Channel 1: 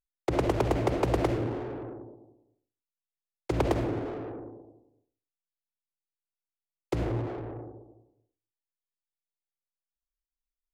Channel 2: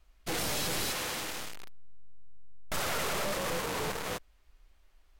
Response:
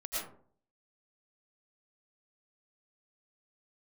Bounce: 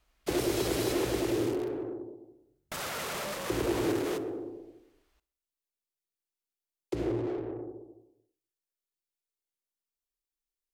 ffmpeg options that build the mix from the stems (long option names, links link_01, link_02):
-filter_complex "[0:a]highshelf=frequency=2100:gain=9.5,alimiter=limit=-23dB:level=0:latency=1:release=32,equalizer=frequency=370:width_type=o:width=0.97:gain=12.5,volume=-7dB[link_01];[1:a]highpass=frequency=100:poles=1,alimiter=level_in=3.5dB:limit=-24dB:level=0:latency=1:release=211,volume=-3.5dB,volume=-1.5dB,asplit=2[link_02][link_03];[link_03]volume=-20dB,aecho=0:1:65|130|195|260|325|390|455|520:1|0.55|0.303|0.166|0.0915|0.0503|0.0277|0.0152[link_04];[link_01][link_02][link_04]amix=inputs=3:normalize=0"